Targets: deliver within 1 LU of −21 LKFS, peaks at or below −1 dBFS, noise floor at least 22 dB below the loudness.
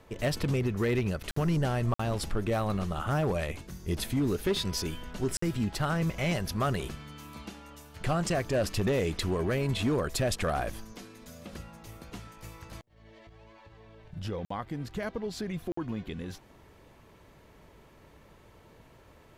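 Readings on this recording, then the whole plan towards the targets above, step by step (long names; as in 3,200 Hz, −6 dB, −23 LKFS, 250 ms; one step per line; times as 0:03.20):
share of clipped samples 1.0%; peaks flattened at −21.5 dBFS; number of dropouts 5; longest dropout 54 ms; integrated loudness −31.0 LKFS; sample peak −21.5 dBFS; target loudness −21.0 LKFS
→ clipped peaks rebuilt −21.5 dBFS
repair the gap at 0:01.31/0:01.94/0:05.37/0:14.45/0:15.72, 54 ms
level +10 dB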